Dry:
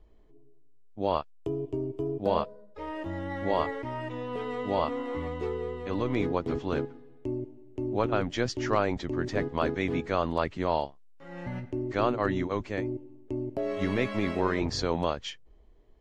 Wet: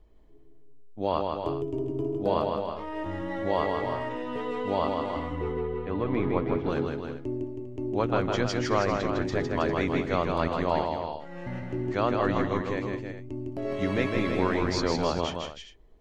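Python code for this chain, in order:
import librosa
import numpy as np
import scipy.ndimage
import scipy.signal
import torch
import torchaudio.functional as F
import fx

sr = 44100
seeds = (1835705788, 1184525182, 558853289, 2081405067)

y = fx.lowpass(x, sr, hz=2400.0, slope=12, at=(5.2, 6.66))
y = fx.peak_eq(y, sr, hz=520.0, db=-6.5, octaves=1.3, at=(12.79, 13.65))
y = fx.echo_multitap(y, sr, ms=(157, 218, 321, 401), db=(-4.0, -19.0, -7.5, -14.0))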